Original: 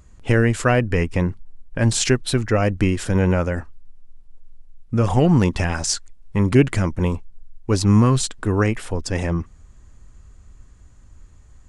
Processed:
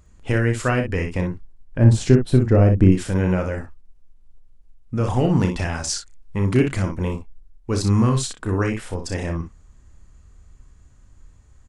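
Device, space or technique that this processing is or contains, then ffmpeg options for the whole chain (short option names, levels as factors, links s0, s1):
slapback doubling: -filter_complex "[0:a]asettb=1/sr,asplit=3[s0][s1][s2];[s0]atrim=end=1.784[s3];[s1]atrim=start=1.78:end=2.92,asetpts=PTS-STARTPTS,afade=t=in:d=0.004:c=qsin,afade=t=out:st=1.136:d=0.004:c=qsin,tiltshelf=f=900:g=9[s4];[s2]atrim=start=2.916[s5];[s3][s4]acrossfade=d=0.004:c1=hsin:c2=qsin[s6];[s6][s5]acrossfade=d=0.004:c1=qsin:c2=hsin,asplit=3[s7][s8][s9];[s8]adelay=32,volume=0.422[s10];[s9]adelay=60,volume=0.422[s11];[s7][s10][s11]amix=inputs=3:normalize=0,volume=0.631"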